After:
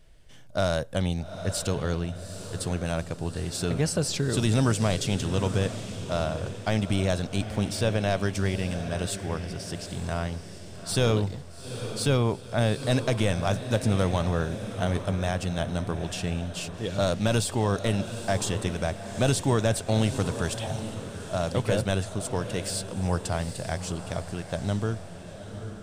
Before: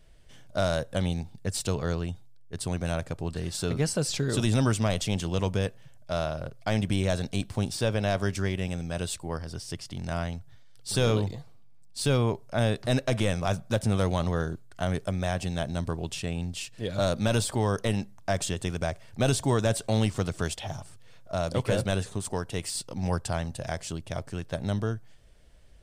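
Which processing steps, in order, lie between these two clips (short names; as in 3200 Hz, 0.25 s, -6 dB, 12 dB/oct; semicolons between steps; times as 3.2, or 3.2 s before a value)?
diffused feedback echo 0.834 s, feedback 45%, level -10 dB; gain +1 dB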